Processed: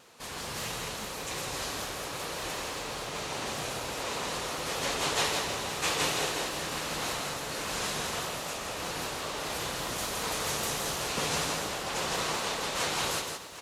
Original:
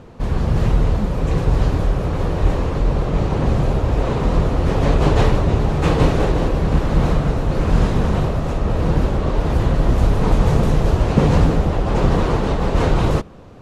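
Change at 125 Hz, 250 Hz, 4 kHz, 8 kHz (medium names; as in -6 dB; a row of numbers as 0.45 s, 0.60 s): -27.0 dB, -21.0 dB, +3.0 dB, no reading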